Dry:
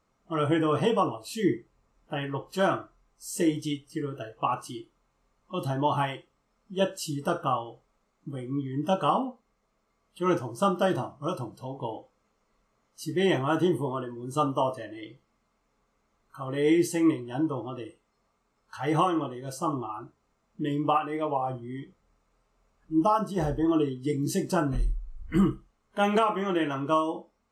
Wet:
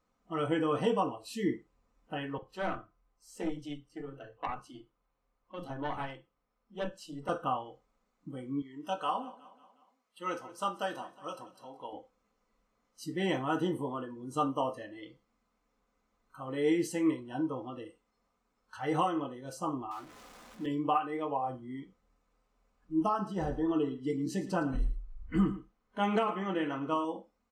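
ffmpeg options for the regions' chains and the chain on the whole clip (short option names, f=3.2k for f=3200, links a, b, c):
-filter_complex "[0:a]asettb=1/sr,asplit=3[a][b][c];[a]atrim=end=2.384[d];[b]atrim=start=2.38:end=7.29,asetpts=PTS-STARTPTS,afade=t=in:d=0.004:c=qsin,afade=t=out:st=4.906:d=0.004:c=qsin,highshelf=f=5.2k:g=-10.5,aeval=exprs='(tanh(7.94*val(0)+0.65)-tanh(0.65))/7.94':c=same,acrossover=split=220[e][f];[e]adelay=40[g];[g][f]amix=inputs=2:normalize=0,atrim=end_sample=216531[h];[c]atrim=start=7.286[i];[d][h]acrossfade=d=0.004:c1=hsin:c2=qsin[j];[j][i]acrossfade=d=0.004:c1=qsin:c2=hsin,asettb=1/sr,asplit=3[k][l][m];[k]atrim=end=8.624[n];[l]atrim=start=8.62:end=11.93,asetpts=PTS-STARTPTS,afade=t=in:d=0.004:c=qsin,afade=t=out:st=3.306:d=0.004:c=qsin,highpass=f=830:p=1,aecho=1:1:182|364|546|728:0.112|0.0595|0.0315|0.0167,atrim=end_sample=145971[o];[m]atrim=start=11.926[p];[n][o]acrossfade=d=0.004:c1=hsin:c2=qsin[q];[q][p]acrossfade=d=0.004:c1=qsin:c2=hsin,asettb=1/sr,asplit=3[r][s][t];[r]atrim=end=19.914[u];[s]atrim=start=19.91:end=20.66,asetpts=PTS-STARTPTS,afade=t=in:d=0.004:c=qsin,afade=t=out:st=0.746:d=0.004:c=qsin,aeval=exprs='val(0)+0.5*0.00944*sgn(val(0))':c=same,lowshelf=f=220:g=-10[v];[t]atrim=start=20.656[w];[u][v]acrossfade=d=0.004:c1=hsin:c2=qsin[x];[x][w]acrossfade=d=0.004:c1=qsin:c2=hsin,asettb=1/sr,asplit=3[y][z][aa];[y]atrim=end=23.084[ab];[z]atrim=start=23.08:end=27.05,asetpts=PTS-STARTPTS,afade=t=in:d=0.004:c=qsin,afade=t=out:st=3.966:d=0.004:c=qsin,highshelf=f=7.7k:g=-11,aecho=1:1:111:0.178,atrim=end_sample=175077[ac];[aa]atrim=start=27.046[ad];[ab][ac]acrossfade=d=0.004:c1=hsin:c2=qsin[ae];[ae][ad]acrossfade=d=0.004:c1=qsin:c2=hsin,highshelf=f=9.2k:g=-5.5,aecho=1:1:4:0.41,volume=-5.5dB"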